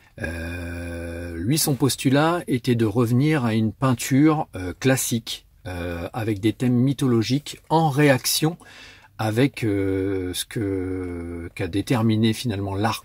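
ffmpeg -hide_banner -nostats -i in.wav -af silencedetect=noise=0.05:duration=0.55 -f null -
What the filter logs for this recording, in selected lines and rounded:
silence_start: 8.53
silence_end: 9.19 | silence_duration: 0.67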